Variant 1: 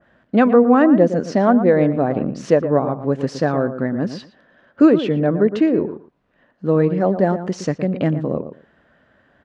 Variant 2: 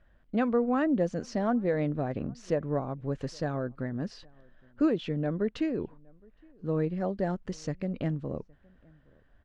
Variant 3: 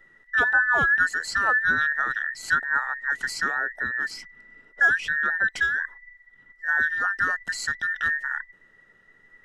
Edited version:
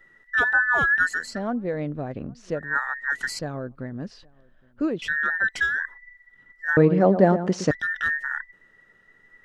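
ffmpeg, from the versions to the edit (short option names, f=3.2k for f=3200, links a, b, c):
-filter_complex "[1:a]asplit=2[a][b];[2:a]asplit=4[c][d][e][f];[c]atrim=end=1.41[g];[a]atrim=start=1.17:end=2.78[h];[d]atrim=start=2.54:end=3.392[i];[b]atrim=start=3.388:end=5.022[j];[e]atrim=start=5.018:end=6.772[k];[0:a]atrim=start=6.768:end=7.712[l];[f]atrim=start=7.708[m];[g][h]acrossfade=d=0.24:c1=tri:c2=tri[n];[n][i]acrossfade=d=0.24:c1=tri:c2=tri[o];[o][j]acrossfade=d=0.004:c1=hsin:c2=hsin[p];[p][k]acrossfade=d=0.004:c1=hsin:c2=hsin[q];[q][l]acrossfade=d=0.004:c1=hsin:c2=hsin[r];[r][m]acrossfade=d=0.004:c1=hsin:c2=hsin"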